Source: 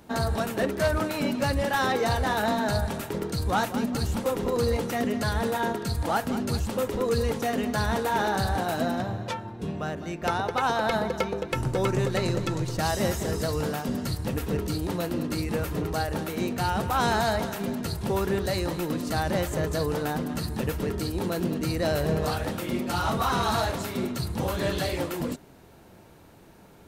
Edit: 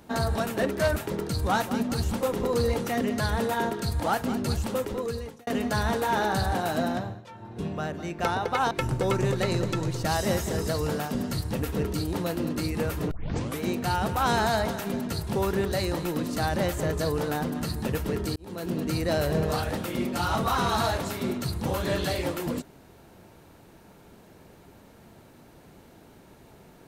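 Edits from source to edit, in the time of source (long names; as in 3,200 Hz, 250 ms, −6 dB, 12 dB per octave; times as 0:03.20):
0:00.96–0:02.99: remove
0:06.72–0:07.50: fade out
0:08.98–0:09.62: duck −18.5 dB, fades 0.32 s
0:10.74–0:11.45: remove
0:15.85: tape start 0.49 s
0:21.10–0:21.57: fade in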